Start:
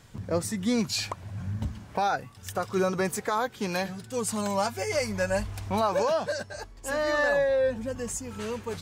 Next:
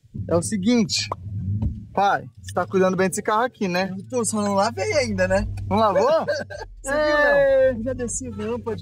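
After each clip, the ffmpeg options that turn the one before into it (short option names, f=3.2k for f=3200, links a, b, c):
-filter_complex "[0:a]afftdn=nr=19:nf=-39,acrossover=split=160|600|1900[a][b][c][d];[c]aeval=exprs='sgn(val(0))*max(abs(val(0))-0.00224,0)':c=same[e];[a][b][e][d]amix=inputs=4:normalize=0,volume=7.5dB"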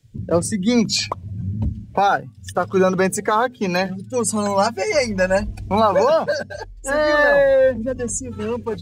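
-af "bandreject=f=50:t=h:w=6,bandreject=f=100:t=h:w=6,bandreject=f=150:t=h:w=6,bandreject=f=200:t=h:w=6,bandreject=f=250:t=h:w=6,volume=2.5dB"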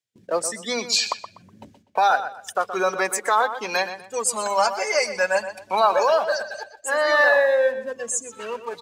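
-filter_complex "[0:a]highpass=650,agate=range=-19dB:threshold=-54dB:ratio=16:detection=peak,asplit=2[a][b];[b]adelay=123,lowpass=f=4.9k:p=1,volume=-11dB,asplit=2[c][d];[d]adelay=123,lowpass=f=4.9k:p=1,volume=0.29,asplit=2[e][f];[f]adelay=123,lowpass=f=4.9k:p=1,volume=0.29[g];[c][e][g]amix=inputs=3:normalize=0[h];[a][h]amix=inputs=2:normalize=0"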